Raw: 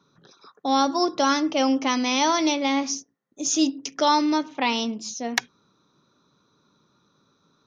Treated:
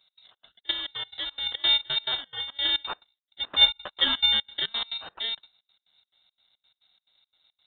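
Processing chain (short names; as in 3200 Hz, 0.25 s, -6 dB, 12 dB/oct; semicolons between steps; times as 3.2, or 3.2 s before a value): FFT order left unsorted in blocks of 32 samples; low shelf 66 Hz +8 dB; 0.71–1.47 tube stage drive 28 dB, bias 0.5; 2.15–2.58 negative-ratio compressor -28 dBFS, ratio -0.5; step gate "x.xx.xx.xx." 174 bpm -24 dB; 3.6–4.26 doubler 13 ms -3 dB; inverted band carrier 3900 Hz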